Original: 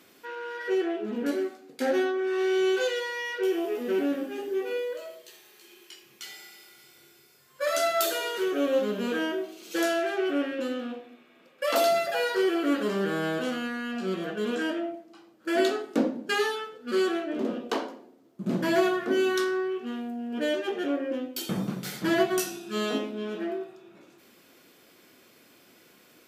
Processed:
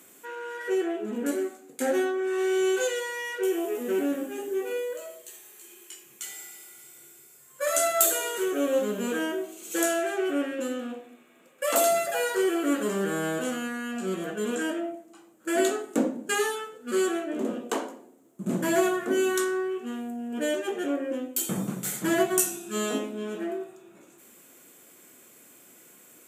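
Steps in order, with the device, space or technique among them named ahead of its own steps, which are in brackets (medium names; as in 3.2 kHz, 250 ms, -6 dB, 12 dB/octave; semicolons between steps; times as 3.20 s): budget condenser microphone (high-pass 93 Hz; resonant high shelf 6.1 kHz +7.5 dB, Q 3)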